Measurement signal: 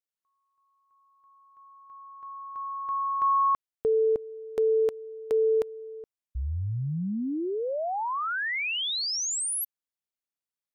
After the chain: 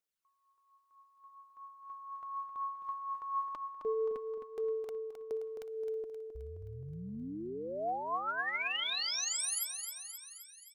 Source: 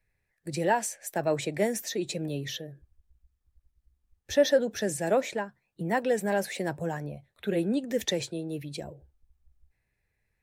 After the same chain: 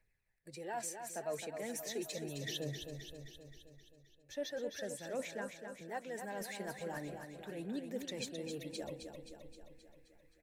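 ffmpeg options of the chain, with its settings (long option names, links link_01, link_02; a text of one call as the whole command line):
ffmpeg -i in.wav -af "areverse,acompressor=threshold=-37dB:ratio=6:attack=0.68:release=615:knee=1:detection=rms,areverse,aphaser=in_gain=1:out_gain=1:delay=4.8:decay=0.44:speed=0.38:type=triangular,equalizer=frequency=75:width=0.56:gain=-7,aecho=1:1:263|526|789|1052|1315|1578|1841|2104:0.447|0.264|0.155|0.0917|0.0541|0.0319|0.0188|0.0111,volume=1dB" out.wav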